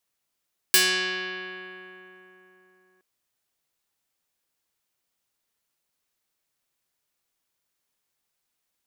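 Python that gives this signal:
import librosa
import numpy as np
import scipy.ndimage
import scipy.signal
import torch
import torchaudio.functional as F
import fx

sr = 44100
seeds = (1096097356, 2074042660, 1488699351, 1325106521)

y = fx.pluck(sr, length_s=2.27, note=54, decay_s=3.8, pick=0.29, brightness='medium')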